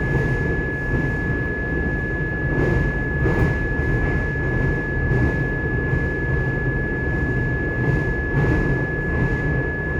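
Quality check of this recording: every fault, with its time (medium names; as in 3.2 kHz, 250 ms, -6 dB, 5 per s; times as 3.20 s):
whine 1.7 kHz -26 dBFS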